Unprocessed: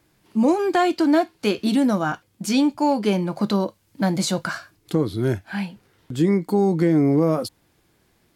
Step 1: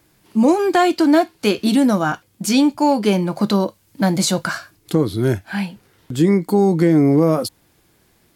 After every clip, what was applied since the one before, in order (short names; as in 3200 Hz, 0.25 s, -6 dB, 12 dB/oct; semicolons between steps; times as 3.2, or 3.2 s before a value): high shelf 7400 Hz +5.5 dB; gain +4 dB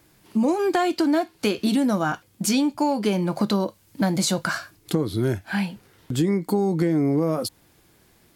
compressor 3:1, threshold -20 dBFS, peak gain reduction 8 dB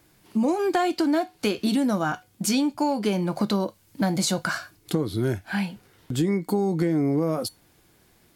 resonator 740 Hz, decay 0.21 s, harmonics all, mix 50%; gain +4 dB